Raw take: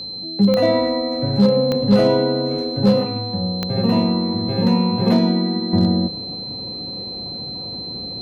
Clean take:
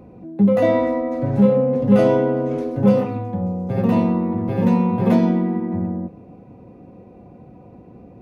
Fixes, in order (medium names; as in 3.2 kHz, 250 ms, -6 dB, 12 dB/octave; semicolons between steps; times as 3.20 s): clip repair -7 dBFS; de-click; band-stop 4.1 kHz, Q 30; trim 0 dB, from 5.73 s -7.5 dB